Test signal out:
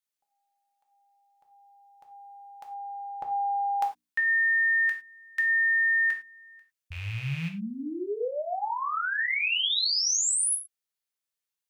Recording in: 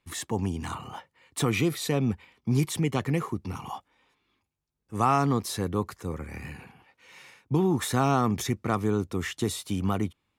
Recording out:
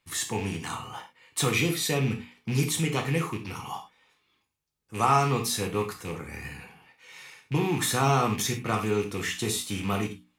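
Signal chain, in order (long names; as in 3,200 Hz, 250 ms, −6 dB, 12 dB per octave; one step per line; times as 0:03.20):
loose part that buzzes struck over −30 dBFS, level −31 dBFS
tilt shelving filter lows −3.5 dB, about 1,300 Hz
mains-hum notches 60/120/180/240/300 Hz
reverb whose tail is shaped and stops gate 130 ms falling, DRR 2 dB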